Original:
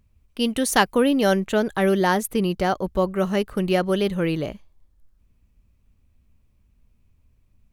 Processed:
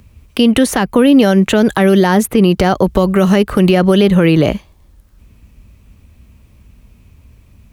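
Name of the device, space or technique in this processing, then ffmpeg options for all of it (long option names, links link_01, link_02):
mastering chain: -filter_complex "[0:a]highpass=43,equalizer=frequency=2700:width_type=o:width=0.77:gain=1.5,acrossover=split=260|2600[link_01][link_02][link_03];[link_01]acompressor=threshold=-25dB:ratio=4[link_04];[link_02]acompressor=threshold=-25dB:ratio=4[link_05];[link_03]acompressor=threshold=-42dB:ratio=4[link_06];[link_04][link_05][link_06]amix=inputs=3:normalize=0,acompressor=threshold=-25dB:ratio=2.5,alimiter=level_in=21dB:limit=-1dB:release=50:level=0:latency=1,volume=-1dB"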